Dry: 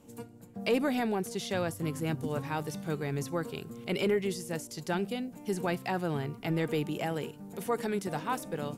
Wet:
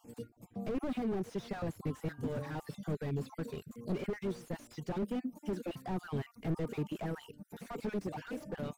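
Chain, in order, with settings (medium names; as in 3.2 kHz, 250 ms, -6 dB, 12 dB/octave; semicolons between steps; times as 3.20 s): random holes in the spectrogram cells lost 33%; reverb removal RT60 0.83 s; 2.07–2.58 s: de-hum 146.9 Hz, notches 11; 5.02–5.74 s: resonant low shelf 180 Hz -7.5 dB, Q 3; slew-rate limiter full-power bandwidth 8.8 Hz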